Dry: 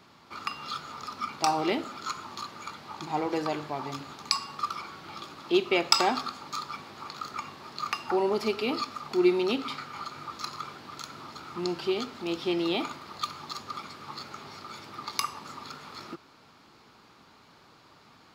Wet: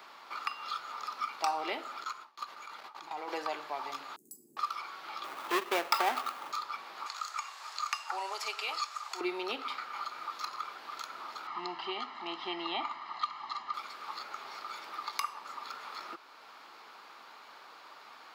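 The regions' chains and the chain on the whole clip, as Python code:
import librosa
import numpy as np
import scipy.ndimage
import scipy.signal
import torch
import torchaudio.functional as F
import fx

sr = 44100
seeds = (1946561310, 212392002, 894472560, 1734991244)

y = fx.chain(x, sr, fx.level_steps(step_db=12),
    fx.gate_hold(open_db=-37.0, close_db=-43.0, hold_ms=71.0, range_db=-21, attack_ms=1.4, release_ms=100.0), at=(2.04, 3.28))
y = fx.chain(y, sr, fx.cheby1_bandstop(low_hz=350.0, high_hz=8300.0, order=4),
    fx.resample_bad(factor=2, down='none', up='hold'), at=(4.16, 4.57))
y = fx.chain(y, sr, fx.halfwave_hold(),
    fx.high_shelf(hz=5300.0, db=-7.0), at=(5.24, 6.52))
y = fx.chain(y, sr, fx.highpass(hz=810.0, slope=12),
    fx.peak_eq(hz=7400.0, db=14.5, octaves=1.0), at=(7.06, 9.21))
y = fx.chain(y, sr, fx.lowpass(hz=3700.0, slope=12),
    fx.comb(ms=1.0, depth=0.77), at=(11.47, 13.74))
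y = scipy.signal.sosfilt(scipy.signal.butter(2, 720.0, 'highpass', fs=sr, output='sos'), y)
y = fx.peak_eq(y, sr, hz=7000.0, db=-7.5, octaves=2.2)
y = fx.band_squash(y, sr, depth_pct=40)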